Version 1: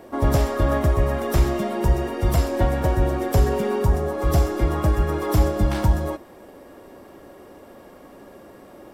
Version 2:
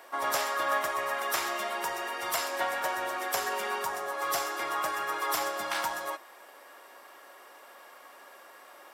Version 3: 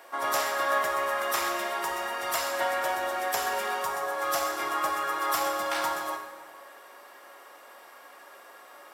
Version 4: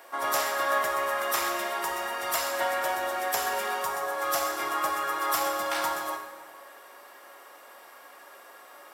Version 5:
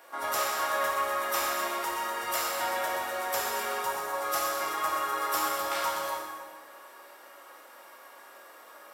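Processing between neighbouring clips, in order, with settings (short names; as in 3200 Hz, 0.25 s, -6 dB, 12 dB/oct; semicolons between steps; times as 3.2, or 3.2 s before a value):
Chebyshev high-pass 1200 Hz, order 2; gain +2.5 dB
plate-style reverb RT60 1.6 s, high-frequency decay 0.65×, DRR 3 dB
high shelf 10000 Hz +4.5 dB
non-linear reverb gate 0.43 s falling, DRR -1 dB; gain -4.5 dB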